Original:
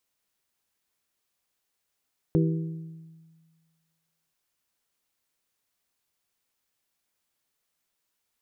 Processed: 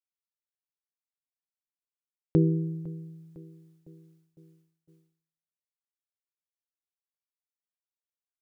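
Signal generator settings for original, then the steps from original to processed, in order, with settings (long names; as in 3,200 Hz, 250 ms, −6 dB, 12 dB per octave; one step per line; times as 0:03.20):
struck glass bell, length 1.98 s, lowest mode 162 Hz, modes 4, decay 1.62 s, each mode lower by 3.5 dB, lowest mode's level −19 dB
parametric band 250 Hz +3.5 dB 1.3 octaves
repeating echo 505 ms, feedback 58%, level −20 dB
downward expander −57 dBFS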